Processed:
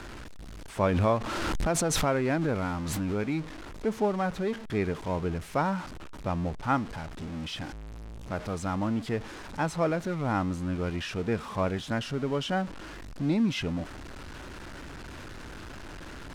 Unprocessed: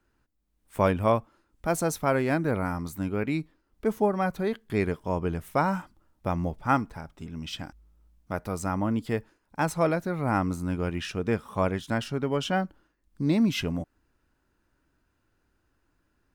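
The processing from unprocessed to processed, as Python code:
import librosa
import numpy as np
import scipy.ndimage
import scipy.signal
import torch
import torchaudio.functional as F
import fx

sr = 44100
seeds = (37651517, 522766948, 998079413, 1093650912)

y = x + 0.5 * 10.0 ** (-32.0 / 20.0) * np.sign(x)
y = fx.air_absorb(y, sr, metres=59.0)
y = fx.pre_swell(y, sr, db_per_s=21.0, at=(0.83, 3.26))
y = F.gain(torch.from_numpy(y), -3.5).numpy()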